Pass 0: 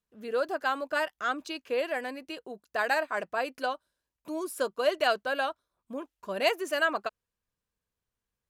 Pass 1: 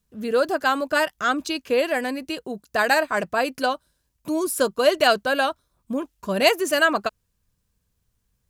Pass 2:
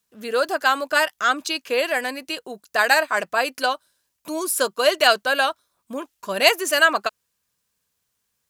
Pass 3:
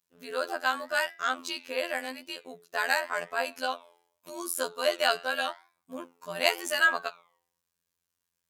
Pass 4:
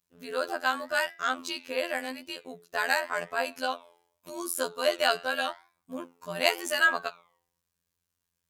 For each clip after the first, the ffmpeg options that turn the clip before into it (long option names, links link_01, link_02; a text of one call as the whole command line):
ffmpeg -i in.wav -af "bass=frequency=250:gain=12,treble=frequency=4000:gain=6,volume=7.5dB" out.wav
ffmpeg -i in.wav -af "highpass=frequency=900:poles=1,volume=4.5dB" out.wav
ffmpeg -i in.wav -af "flanger=delay=8.5:depth=5.6:regen=87:speed=0.87:shape=sinusoidal,afftfilt=real='hypot(re,im)*cos(PI*b)':imag='0':win_size=2048:overlap=0.75,volume=-1.5dB" out.wav
ffmpeg -i in.wav -af "lowshelf=frequency=180:gain=10" out.wav